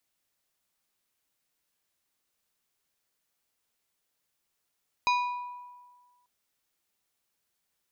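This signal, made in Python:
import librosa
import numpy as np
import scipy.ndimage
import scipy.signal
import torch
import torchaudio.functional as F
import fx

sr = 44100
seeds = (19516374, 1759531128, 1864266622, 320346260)

y = fx.strike_glass(sr, length_s=1.19, level_db=-21.5, body='plate', hz=982.0, decay_s=1.53, tilt_db=5.0, modes=5)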